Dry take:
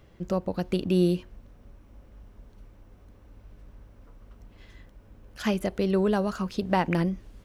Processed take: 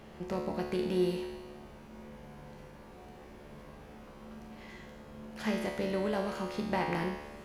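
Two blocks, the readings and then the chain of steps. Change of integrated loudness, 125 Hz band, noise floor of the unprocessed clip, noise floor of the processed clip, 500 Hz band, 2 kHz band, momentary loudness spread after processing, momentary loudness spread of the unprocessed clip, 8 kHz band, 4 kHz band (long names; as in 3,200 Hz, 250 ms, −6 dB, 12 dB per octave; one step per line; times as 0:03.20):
−7.0 dB, −10.0 dB, −55 dBFS, −51 dBFS, −5.5 dB, −3.0 dB, 19 LU, 7 LU, −4.5 dB, −4.5 dB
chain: compressor on every frequency bin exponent 0.6
dynamic equaliser 2,000 Hz, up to +5 dB, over −55 dBFS, Q 7.9
tuned comb filter 73 Hz, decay 1.2 s, harmonics all, mix 90%
level +4.5 dB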